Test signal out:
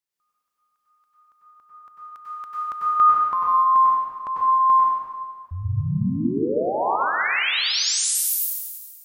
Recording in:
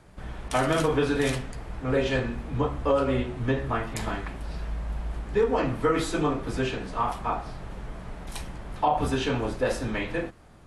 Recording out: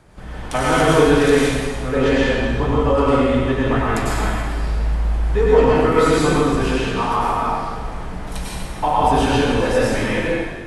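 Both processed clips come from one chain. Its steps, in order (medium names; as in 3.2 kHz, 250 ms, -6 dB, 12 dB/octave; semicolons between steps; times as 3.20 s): plate-style reverb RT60 1.6 s, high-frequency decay 0.95×, pre-delay 85 ms, DRR -6 dB; trim +3 dB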